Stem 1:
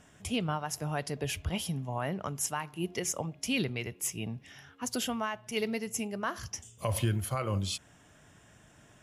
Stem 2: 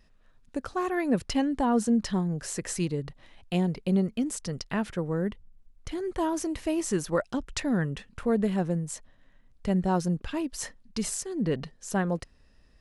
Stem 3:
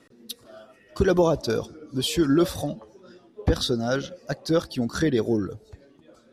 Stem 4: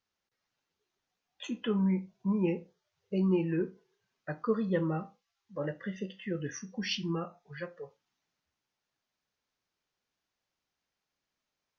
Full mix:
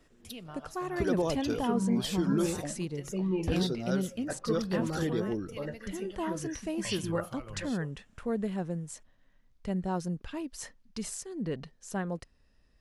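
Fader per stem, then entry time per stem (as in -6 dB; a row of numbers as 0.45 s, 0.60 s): -14.0 dB, -6.5 dB, -10.0 dB, -3.0 dB; 0.00 s, 0.00 s, 0.00 s, 0.00 s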